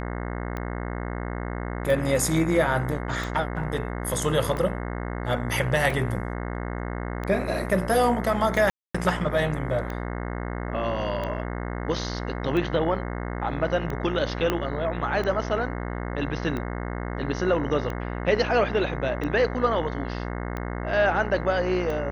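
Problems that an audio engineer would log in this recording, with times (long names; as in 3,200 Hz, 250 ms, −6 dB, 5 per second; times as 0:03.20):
mains buzz 60 Hz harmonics 36 −31 dBFS
scratch tick 45 rpm −19 dBFS
0:08.70–0:08.95: drop-out 245 ms
0:14.50: click −10 dBFS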